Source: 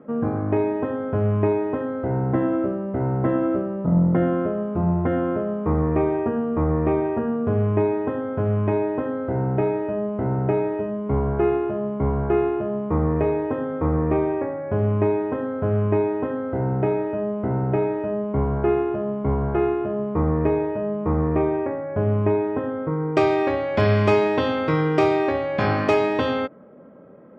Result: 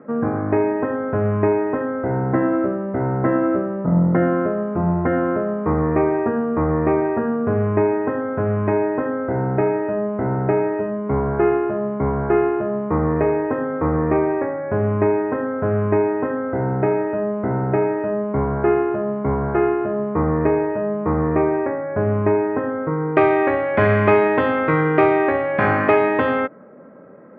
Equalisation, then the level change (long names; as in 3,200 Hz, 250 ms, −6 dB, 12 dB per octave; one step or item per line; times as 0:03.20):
high-pass filter 130 Hz 6 dB per octave
low-pass with resonance 1,900 Hz, resonance Q 1.9
high-frequency loss of the air 130 metres
+3.5 dB